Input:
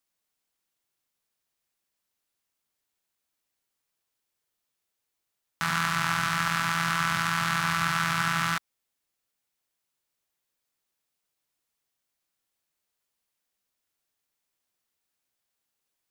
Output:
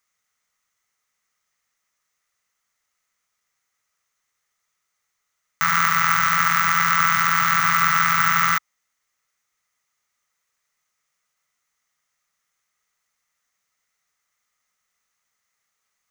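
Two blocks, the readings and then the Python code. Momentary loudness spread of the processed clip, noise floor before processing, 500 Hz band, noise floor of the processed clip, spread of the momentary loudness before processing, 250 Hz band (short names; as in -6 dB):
3 LU, -83 dBFS, 0.0 dB, -77 dBFS, 3 LU, -0.5 dB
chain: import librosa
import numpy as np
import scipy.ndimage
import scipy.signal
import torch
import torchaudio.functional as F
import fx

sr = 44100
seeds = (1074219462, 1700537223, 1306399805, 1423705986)

y = (np.kron(x[::2], np.eye(2)[0]) * 2)[:len(x)]
y = fx.graphic_eq_31(y, sr, hz=(315, 1250, 2000, 6300, 12500), db=(-11, 12, 12, 10, -5))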